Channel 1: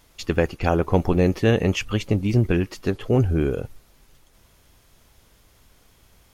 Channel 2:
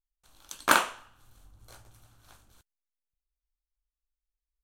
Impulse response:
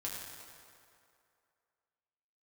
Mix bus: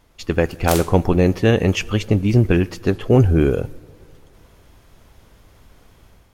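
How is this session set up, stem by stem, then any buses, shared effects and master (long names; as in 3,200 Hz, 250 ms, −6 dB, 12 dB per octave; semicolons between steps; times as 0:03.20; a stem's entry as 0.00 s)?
+1.5 dB, 0.00 s, send −19.5 dB, no processing
−6.0 dB, 0.00 s, no send, ceiling on every frequency bin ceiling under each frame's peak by 29 dB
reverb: on, RT60 2.5 s, pre-delay 5 ms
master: automatic gain control gain up to 6 dB; one half of a high-frequency compander decoder only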